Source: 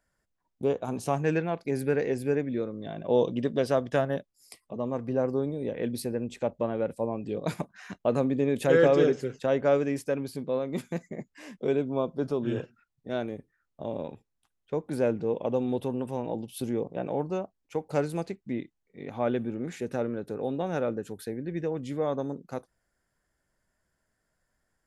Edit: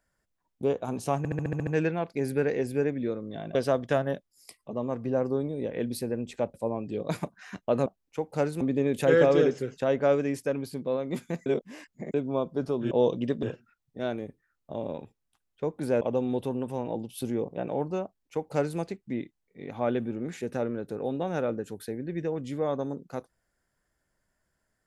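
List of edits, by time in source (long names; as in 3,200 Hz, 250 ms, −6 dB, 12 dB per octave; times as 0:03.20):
0:01.18: stutter 0.07 s, 8 plays
0:03.06–0:03.58: move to 0:12.53
0:06.57–0:06.91: remove
0:11.08–0:11.76: reverse
0:15.11–0:15.40: remove
0:17.43–0:18.18: duplicate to 0:08.23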